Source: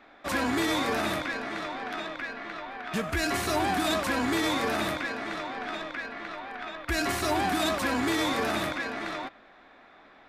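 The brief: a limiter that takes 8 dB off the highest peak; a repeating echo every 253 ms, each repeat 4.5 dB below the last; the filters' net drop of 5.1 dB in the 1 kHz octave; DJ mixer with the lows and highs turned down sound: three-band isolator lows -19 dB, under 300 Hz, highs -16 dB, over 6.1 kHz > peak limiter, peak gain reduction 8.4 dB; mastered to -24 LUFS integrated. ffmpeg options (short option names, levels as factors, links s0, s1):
-filter_complex "[0:a]equalizer=f=1000:t=o:g=-7,alimiter=level_in=1.12:limit=0.0631:level=0:latency=1,volume=0.891,acrossover=split=300 6100:gain=0.112 1 0.158[s0][s1][s2];[s0][s1][s2]amix=inputs=3:normalize=0,aecho=1:1:253|506|759|1012|1265|1518|1771|2024|2277:0.596|0.357|0.214|0.129|0.0772|0.0463|0.0278|0.0167|0.01,volume=5.62,alimiter=limit=0.168:level=0:latency=1"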